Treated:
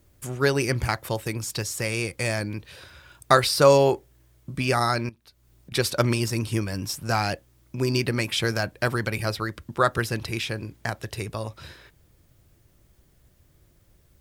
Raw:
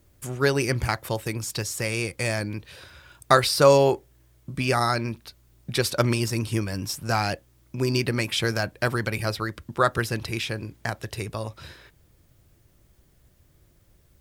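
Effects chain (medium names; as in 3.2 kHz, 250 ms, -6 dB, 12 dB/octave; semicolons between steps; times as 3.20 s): 5.09–5.72 s: compression 6:1, threshold -47 dBFS, peak gain reduction 18 dB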